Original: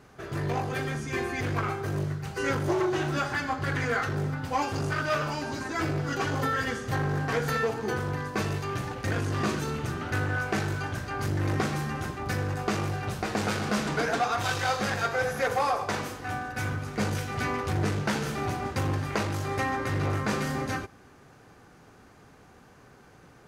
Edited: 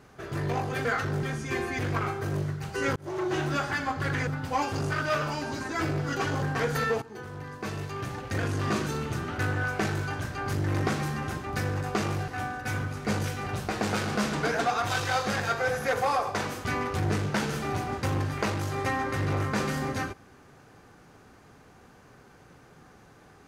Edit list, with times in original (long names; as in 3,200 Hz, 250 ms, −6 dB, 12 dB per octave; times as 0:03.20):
0:02.58–0:02.98: fade in
0:03.89–0:04.27: move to 0:00.85
0:06.42–0:07.15: remove
0:07.75–0:09.25: fade in, from −15 dB
0:16.19–0:17.38: move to 0:13.01